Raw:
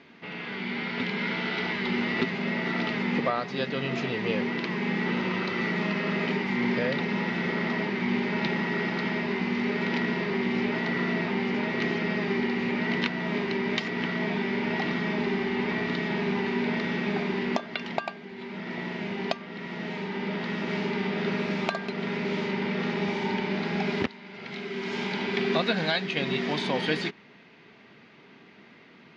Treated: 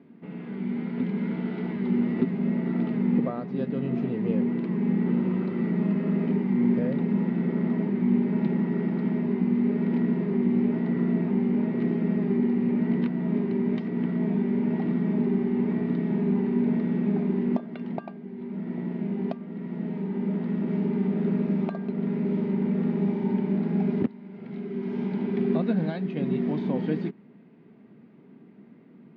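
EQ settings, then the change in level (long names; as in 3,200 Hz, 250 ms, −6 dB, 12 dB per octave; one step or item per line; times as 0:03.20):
resonant band-pass 210 Hz, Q 1.4
+6.5 dB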